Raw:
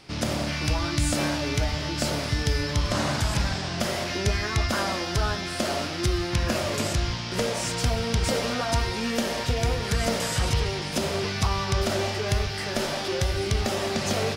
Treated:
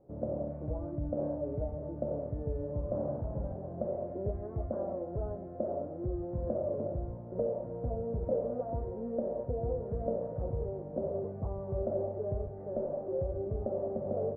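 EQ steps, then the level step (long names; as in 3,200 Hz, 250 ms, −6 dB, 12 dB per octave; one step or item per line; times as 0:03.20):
transistor ladder low-pass 620 Hz, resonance 65%
high-frequency loss of the air 360 metres
0.0 dB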